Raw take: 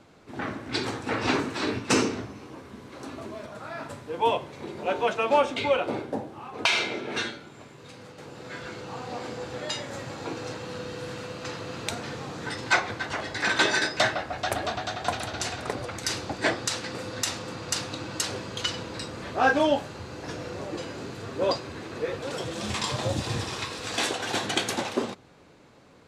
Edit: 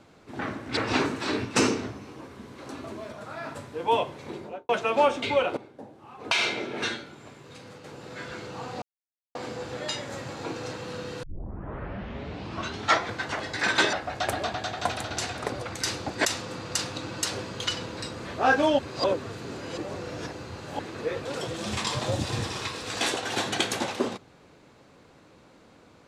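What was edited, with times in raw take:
0.77–1.11 cut
4.66–5.03 studio fade out
5.91–6.77 fade in quadratic, from -16 dB
9.16 insert silence 0.53 s
11.04 tape start 1.89 s
13.74–14.16 cut
16.48–17.22 cut
19.76–21.76 reverse

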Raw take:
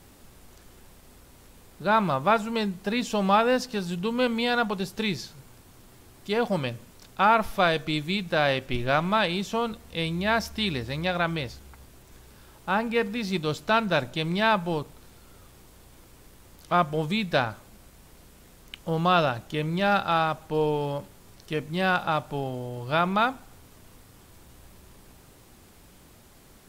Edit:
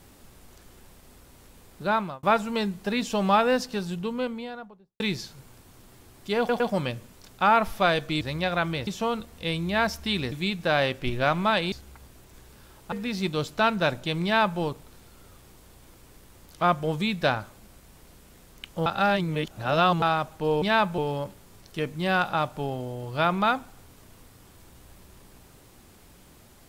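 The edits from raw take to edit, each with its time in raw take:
1.83–2.23 fade out
3.64–5 studio fade out
6.38 stutter 0.11 s, 3 plays
7.99–9.39 swap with 10.84–11.5
12.7–13.02 cut
14.34–14.7 copy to 20.72
18.96–20.12 reverse

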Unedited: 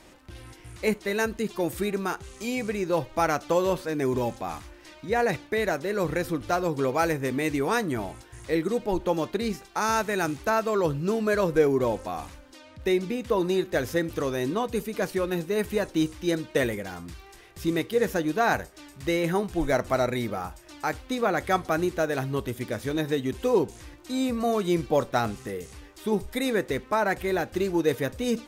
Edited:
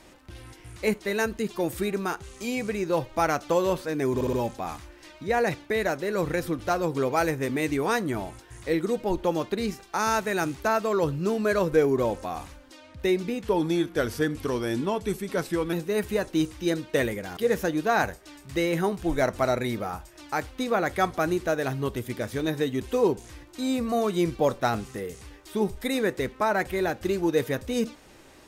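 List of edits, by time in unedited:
4.15 stutter 0.06 s, 4 plays
13.23–15.34 speed 91%
16.98–17.88 cut

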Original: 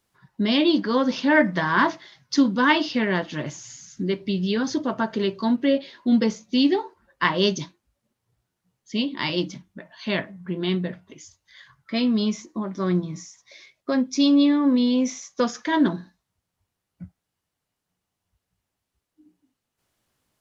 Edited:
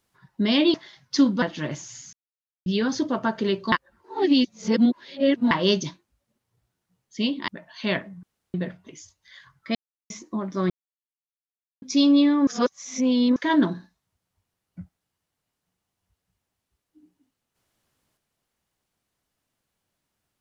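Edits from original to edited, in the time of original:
0.74–1.93 cut
2.61–3.17 cut
3.88–4.41 mute
5.47–7.26 reverse
9.23–9.71 cut
10.46–10.77 room tone
11.98–12.33 mute
12.93–14.05 mute
14.7–15.59 reverse

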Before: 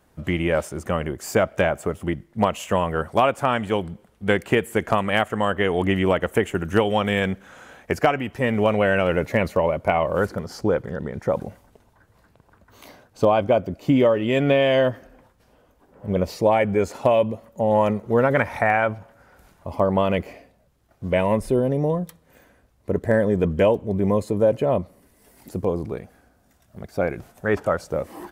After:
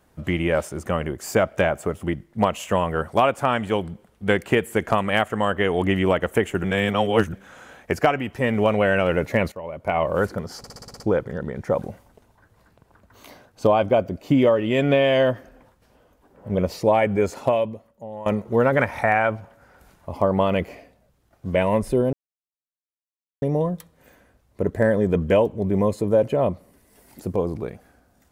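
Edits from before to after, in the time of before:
6.64–7.33 reverse
9.52–10.01 fade in quadratic, from -15.5 dB
10.58 stutter 0.06 s, 8 plays
16.98–17.84 fade out quadratic, to -17.5 dB
21.71 insert silence 1.29 s

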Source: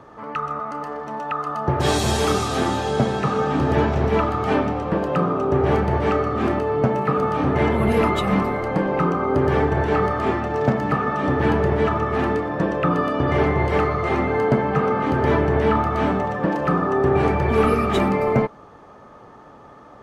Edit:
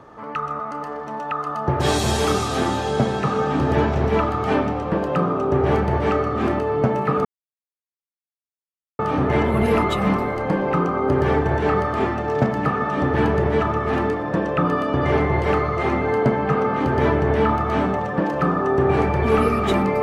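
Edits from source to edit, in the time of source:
7.25 insert silence 1.74 s

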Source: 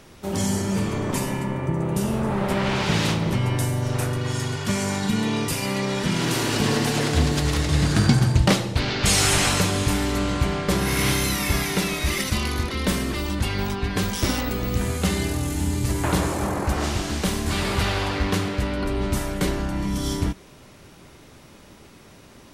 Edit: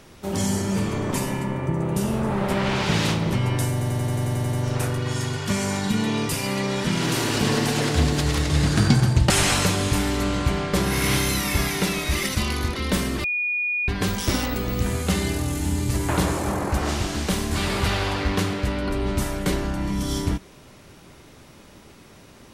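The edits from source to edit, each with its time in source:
3.72 stutter 0.09 s, 10 plays
8.49–9.25 cut
13.19–13.83 bleep 2450 Hz -21.5 dBFS

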